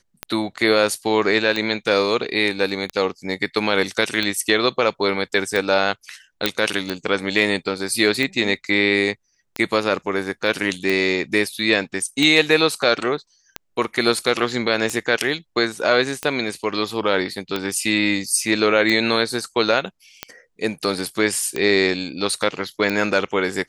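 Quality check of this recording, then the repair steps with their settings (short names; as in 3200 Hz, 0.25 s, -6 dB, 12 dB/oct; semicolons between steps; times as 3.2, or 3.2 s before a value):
tick 45 rpm -9 dBFS
6.46 pop -2 dBFS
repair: de-click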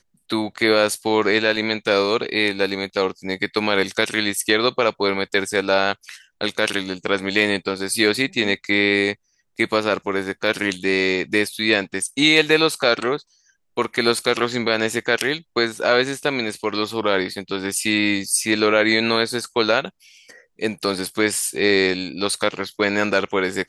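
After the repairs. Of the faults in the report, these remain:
none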